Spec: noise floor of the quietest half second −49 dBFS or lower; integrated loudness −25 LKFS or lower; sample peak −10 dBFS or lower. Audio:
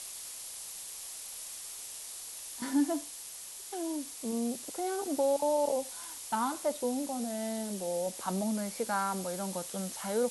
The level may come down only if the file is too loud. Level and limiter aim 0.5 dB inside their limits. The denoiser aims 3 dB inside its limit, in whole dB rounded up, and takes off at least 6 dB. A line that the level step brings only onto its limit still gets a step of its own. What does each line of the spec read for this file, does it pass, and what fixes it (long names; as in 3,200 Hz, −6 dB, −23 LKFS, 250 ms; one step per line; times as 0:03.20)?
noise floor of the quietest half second −45 dBFS: out of spec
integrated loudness −34.5 LKFS: in spec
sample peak −18.5 dBFS: in spec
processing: broadband denoise 7 dB, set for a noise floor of −45 dBFS